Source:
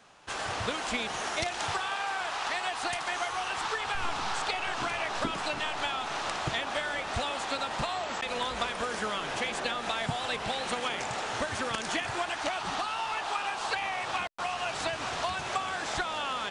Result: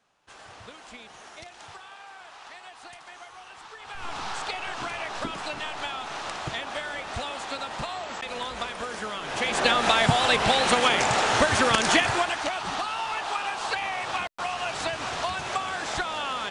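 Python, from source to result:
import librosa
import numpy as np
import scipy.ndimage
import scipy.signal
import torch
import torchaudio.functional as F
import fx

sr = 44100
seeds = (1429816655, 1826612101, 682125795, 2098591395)

y = fx.gain(x, sr, db=fx.line((3.73, -13.0), (4.16, -1.0), (9.2, -1.0), (9.69, 11.0), (11.98, 11.0), (12.48, 2.5)))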